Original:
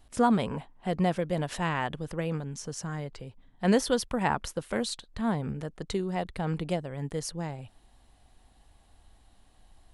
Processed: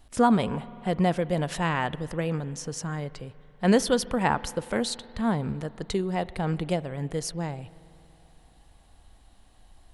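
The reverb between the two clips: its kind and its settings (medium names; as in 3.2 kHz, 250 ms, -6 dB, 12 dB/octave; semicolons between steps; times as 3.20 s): spring tank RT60 3 s, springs 47 ms, chirp 50 ms, DRR 18 dB; trim +3 dB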